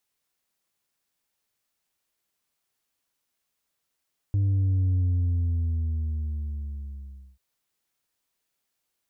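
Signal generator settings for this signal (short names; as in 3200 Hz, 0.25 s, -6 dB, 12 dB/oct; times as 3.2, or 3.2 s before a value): sub drop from 100 Hz, over 3.04 s, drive 3 dB, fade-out 2.43 s, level -20.5 dB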